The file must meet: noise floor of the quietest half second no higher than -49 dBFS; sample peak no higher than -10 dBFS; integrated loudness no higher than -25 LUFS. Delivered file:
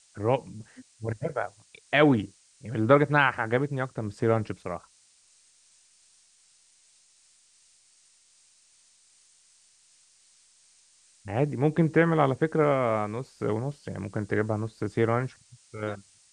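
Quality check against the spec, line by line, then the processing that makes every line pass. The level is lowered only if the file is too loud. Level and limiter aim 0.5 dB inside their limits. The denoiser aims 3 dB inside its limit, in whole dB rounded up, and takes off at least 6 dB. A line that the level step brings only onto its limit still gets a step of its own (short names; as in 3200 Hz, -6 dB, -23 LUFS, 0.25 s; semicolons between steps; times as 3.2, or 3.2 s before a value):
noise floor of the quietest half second -62 dBFS: OK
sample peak -6.5 dBFS: fail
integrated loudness -27.0 LUFS: OK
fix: limiter -10.5 dBFS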